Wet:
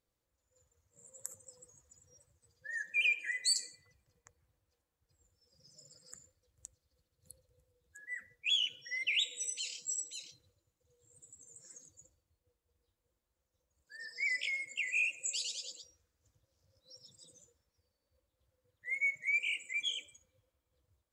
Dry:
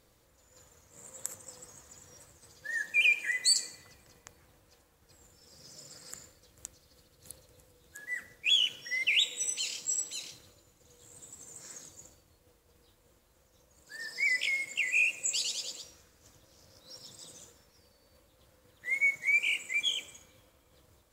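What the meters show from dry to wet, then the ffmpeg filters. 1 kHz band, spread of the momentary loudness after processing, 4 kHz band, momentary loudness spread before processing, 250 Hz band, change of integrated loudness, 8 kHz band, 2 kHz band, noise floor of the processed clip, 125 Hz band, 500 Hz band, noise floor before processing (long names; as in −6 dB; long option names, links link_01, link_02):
below −15 dB, 18 LU, −5.5 dB, 23 LU, below −10 dB, −5.0 dB, −5.5 dB, −5.5 dB, below −85 dBFS, can't be measured, −9.0 dB, −67 dBFS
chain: -af "afftdn=noise_reduction=15:noise_floor=-49,volume=-5.5dB"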